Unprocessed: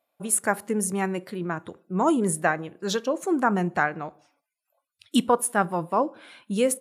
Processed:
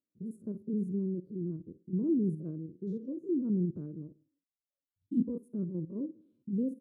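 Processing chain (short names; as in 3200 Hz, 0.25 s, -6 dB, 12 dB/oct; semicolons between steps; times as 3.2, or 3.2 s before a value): stepped spectrum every 50 ms; inverse Chebyshev low-pass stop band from 710 Hz, stop band 40 dB; gain -3 dB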